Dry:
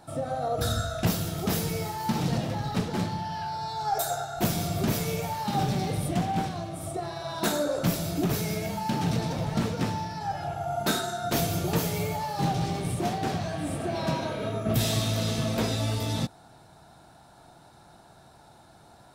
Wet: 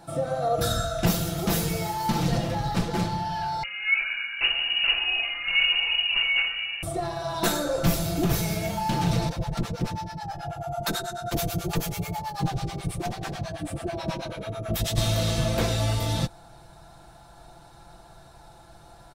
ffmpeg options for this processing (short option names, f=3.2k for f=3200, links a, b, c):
-filter_complex "[0:a]asettb=1/sr,asplit=3[a][b][c];[a]atrim=end=3.634[d];[b]atrim=start=3.63:end=6.83,asetpts=PTS-STARTPTS,afade=t=in:d=0.004:c=qsin,afade=t=out:st=3.196:d=0.004:c=qsin,lowpass=f=2.6k:t=q:w=0.5098,lowpass=f=2.6k:t=q:w=0.6013,lowpass=f=2.6k:t=q:w=0.9,lowpass=f=2.6k:t=q:w=2.563,afreqshift=-3000[e];[c]atrim=start=6.826[f];[d][e]acrossfade=d=0.004:c1=hsin:c2=qsin[g];[g][f]acrossfade=d=0.004:c1=qsin:c2=hsin,asettb=1/sr,asplit=3[h][i][j];[h]atrim=end=9.294[k];[i]atrim=start=9.29:end=14.98,asetpts=PTS-STARTPTS,afade=t=in:d=0.004:c=qsin,afade=t=out:st=5.686:d=0.004:c=qsin,acrossover=split=630[l][m];[l]aeval=exprs='val(0)*(1-1/2+1/2*cos(2*PI*9.2*n/s))':c=same[n];[m]aeval=exprs='val(0)*(1-1/2-1/2*cos(2*PI*9.2*n/s))':c=same[o];[n][o]amix=inputs=2:normalize=0[p];[j]atrim=start=14.976[q];[k][p]acrossfade=d=0.004:c1=hsin:c2=qsin[r];[r][q]acrossfade=d=0.004:c1=qsin:c2=hsin,aecho=1:1:5.9:0.54,asubboost=boost=6:cutoff=70,volume=2dB"